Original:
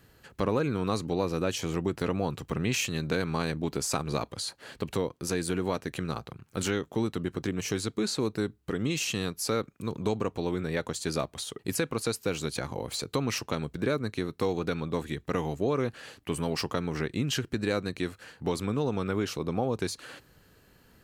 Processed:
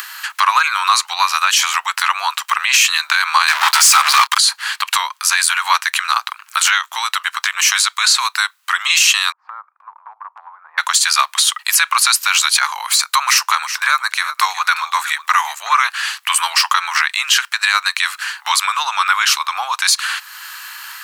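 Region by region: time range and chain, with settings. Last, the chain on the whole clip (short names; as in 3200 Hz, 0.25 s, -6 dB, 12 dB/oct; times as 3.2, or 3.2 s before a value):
3.48–4.38 bell 550 Hz -10.5 dB 0.42 oct + sample leveller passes 5
9.32–10.78 LPF 1000 Hz 24 dB/oct + compressor 4:1, threshold -39 dBFS + three-band expander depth 70%
12.78–15.74 dynamic EQ 3200 Hz, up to -6 dB, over -51 dBFS, Q 1.6 + echo 0.368 s -14.5 dB
whole clip: upward compressor, threshold -43 dBFS; steep high-pass 980 Hz 48 dB/oct; maximiser +26.5 dB; gain -1 dB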